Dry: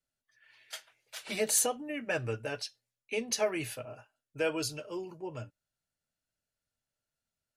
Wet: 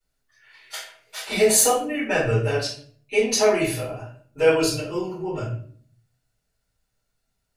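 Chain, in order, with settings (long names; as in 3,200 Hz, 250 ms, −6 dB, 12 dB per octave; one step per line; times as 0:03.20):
rectangular room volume 56 cubic metres, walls mixed, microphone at 3.2 metres
level −2 dB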